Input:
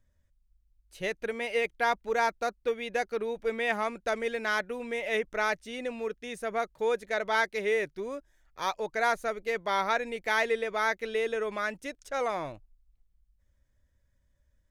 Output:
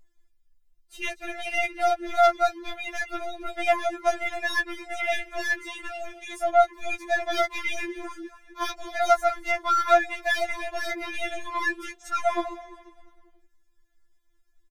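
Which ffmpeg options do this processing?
-filter_complex "[0:a]aeval=exprs='0.2*(cos(1*acos(clip(val(0)/0.2,-1,1)))-cos(1*PI/2))+0.00631*(cos(6*acos(clip(val(0)/0.2,-1,1)))-cos(6*PI/2))+0.00891*(cos(8*acos(clip(val(0)/0.2,-1,1)))-cos(8*PI/2))':c=same,asplit=5[a][b][c][d][e];[b]adelay=230,afreqshift=-59,volume=-16.5dB[f];[c]adelay=460,afreqshift=-118,volume=-22.9dB[g];[d]adelay=690,afreqshift=-177,volume=-29.3dB[h];[e]adelay=920,afreqshift=-236,volume=-35.6dB[i];[a][f][g][h][i]amix=inputs=5:normalize=0,afftfilt=real='re*4*eq(mod(b,16),0)':imag='im*4*eq(mod(b,16),0)':win_size=2048:overlap=0.75,volume=7dB"

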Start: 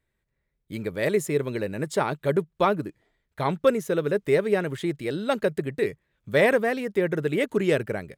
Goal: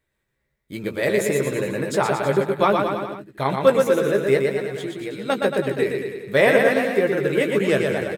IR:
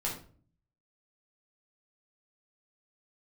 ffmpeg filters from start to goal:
-filter_complex "[0:a]lowshelf=f=200:g=-5.5,asettb=1/sr,asplit=3[a][b][c];[a]atrim=end=4.374[d];[b]atrim=start=4.37:end=5.3,asetpts=PTS-STARTPTS,afade=t=in:d=0.004:c=qsin,afade=t=out:st=0.926:d=0.004:c=qsin,acompressor=threshold=-33dB:ratio=6[e];[c]atrim=start=5.296[f];[d][e]acrossfade=d=0.004:c1=hsin:c2=qsin[g];[g][f]acrossfade=d=0.004:c1=qsin:c2=hsin,asplit=2[h][i];[i]adelay=15,volume=-7dB[j];[h][j]amix=inputs=2:normalize=0,aecho=1:1:120|228|325.2|412.7|491.4:0.631|0.398|0.251|0.158|0.1,volume=3dB"

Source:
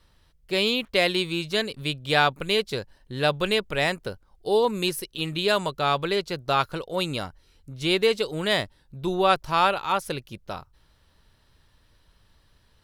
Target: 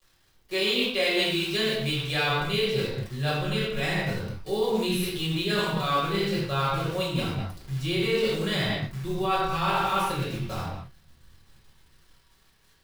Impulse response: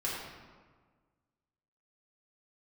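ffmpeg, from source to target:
-filter_complex "[0:a]flanger=delay=22.5:depth=7:speed=0.2,acrossover=split=170|2400[a][b][c];[a]dynaudnorm=f=370:g=11:m=16dB[d];[d][b][c]amix=inputs=3:normalize=0,acrusher=bits=8:dc=4:mix=0:aa=0.000001,equalizer=f=710:t=o:w=2.6:g=-4.5[e];[1:a]atrim=start_sample=2205,afade=t=out:st=0.31:d=0.01,atrim=end_sample=14112[f];[e][f]afir=irnorm=-1:irlink=0,areverse,acompressor=threshold=-23dB:ratio=6,areverse,lowshelf=f=150:g=-11,volume=3dB"

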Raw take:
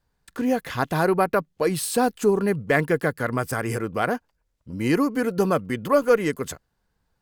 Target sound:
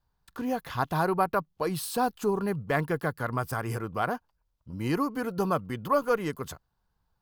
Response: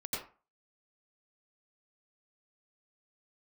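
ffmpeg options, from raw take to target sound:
-af "equalizer=f=250:t=o:w=1:g=-5,equalizer=f=500:t=o:w=1:g=-6,equalizer=f=1k:t=o:w=1:g=4,equalizer=f=2k:t=o:w=1:g=-8,equalizer=f=8k:t=o:w=1:g=-8,volume=-2dB"

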